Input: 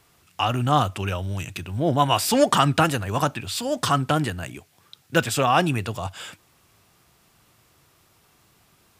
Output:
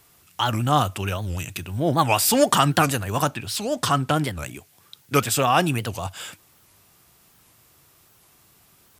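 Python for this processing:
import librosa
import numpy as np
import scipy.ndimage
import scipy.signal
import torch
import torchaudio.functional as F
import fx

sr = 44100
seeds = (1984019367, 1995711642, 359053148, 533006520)

y = fx.high_shelf(x, sr, hz=8700.0, db=fx.steps((0.0, 11.0), (3.29, 3.5), (4.38, 10.5)))
y = fx.record_warp(y, sr, rpm=78.0, depth_cents=250.0)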